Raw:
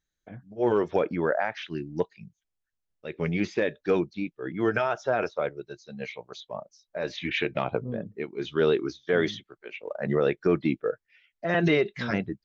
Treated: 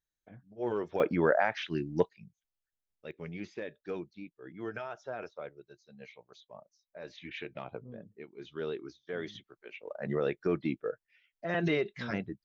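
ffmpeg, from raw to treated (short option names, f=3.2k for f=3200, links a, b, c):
-af "asetnsamples=n=441:p=0,asendcmd='1 volume volume 0dB;2.09 volume volume -7dB;3.11 volume volume -14dB;9.35 volume volume -7dB',volume=-9.5dB"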